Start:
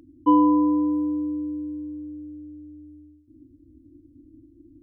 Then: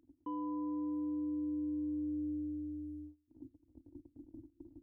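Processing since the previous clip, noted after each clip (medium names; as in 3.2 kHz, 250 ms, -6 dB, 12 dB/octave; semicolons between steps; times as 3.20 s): gate -49 dBFS, range -21 dB; reverse; compression 5:1, threshold -29 dBFS, peak gain reduction 14.5 dB; reverse; peak limiter -34 dBFS, peak gain reduction 11 dB; trim +1 dB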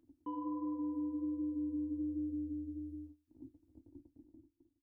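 fade out at the end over 1.09 s; flange 1.3 Hz, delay 8.3 ms, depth 7.5 ms, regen -52%; trim +3.5 dB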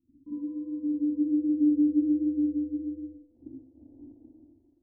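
spring tank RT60 1 s, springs 41/54/58 ms, chirp 50 ms, DRR -8.5 dB; dynamic bell 260 Hz, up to +6 dB, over -49 dBFS, Q 0.79; low-pass sweep 210 Hz -> 670 Hz, 0.62–3.94 s; trim -5 dB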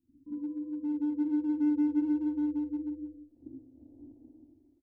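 in parallel at -8.5 dB: hard clipper -29.5 dBFS, distortion -6 dB; on the sum: delay 181 ms -13.5 dB; trim -5 dB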